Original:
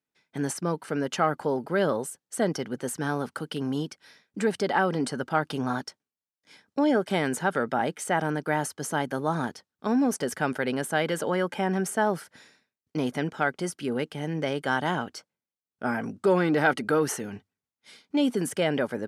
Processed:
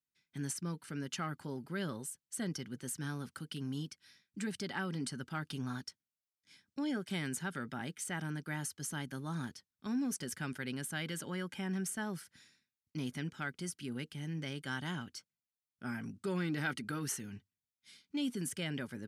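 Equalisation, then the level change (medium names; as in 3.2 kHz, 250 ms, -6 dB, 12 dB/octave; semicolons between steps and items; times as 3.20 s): amplifier tone stack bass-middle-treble 6-0-2; band-stop 460 Hz, Q 12; +9.0 dB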